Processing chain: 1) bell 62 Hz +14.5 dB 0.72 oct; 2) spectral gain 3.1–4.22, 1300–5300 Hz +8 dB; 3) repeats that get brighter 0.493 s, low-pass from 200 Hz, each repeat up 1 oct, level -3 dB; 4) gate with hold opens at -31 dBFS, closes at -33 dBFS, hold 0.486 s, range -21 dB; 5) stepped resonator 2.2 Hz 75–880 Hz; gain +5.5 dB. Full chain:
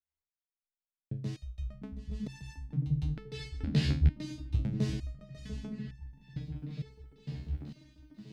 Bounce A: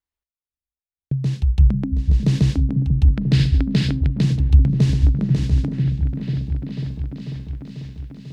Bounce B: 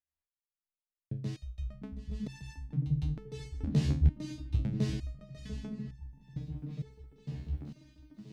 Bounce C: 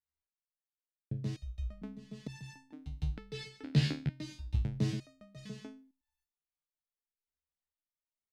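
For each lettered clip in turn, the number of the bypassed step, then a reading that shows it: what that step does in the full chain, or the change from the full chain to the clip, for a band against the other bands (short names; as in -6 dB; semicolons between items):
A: 5, 125 Hz band +5.0 dB; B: 2, 4 kHz band -5.0 dB; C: 3, momentary loudness spread change +2 LU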